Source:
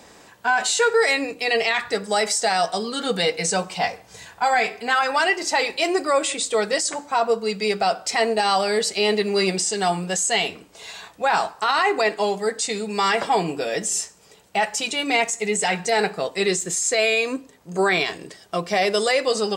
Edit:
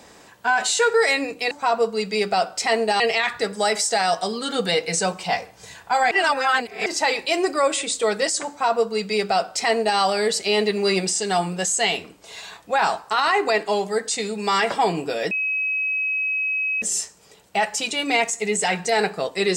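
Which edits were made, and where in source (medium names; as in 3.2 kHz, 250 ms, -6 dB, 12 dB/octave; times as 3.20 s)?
4.62–5.37 s: reverse
7.00–8.49 s: copy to 1.51 s
13.82 s: add tone 2.55 kHz -20.5 dBFS 1.51 s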